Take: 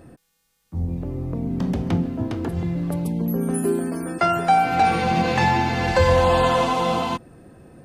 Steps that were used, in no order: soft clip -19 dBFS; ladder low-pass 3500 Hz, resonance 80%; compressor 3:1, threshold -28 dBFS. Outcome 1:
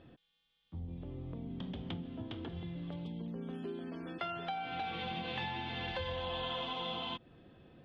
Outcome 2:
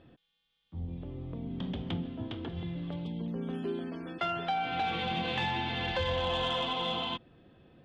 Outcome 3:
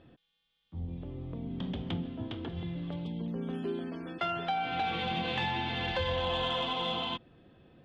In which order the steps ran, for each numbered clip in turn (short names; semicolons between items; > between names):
compressor > ladder low-pass > soft clip; ladder low-pass > soft clip > compressor; ladder low-pass > compressor > soft clip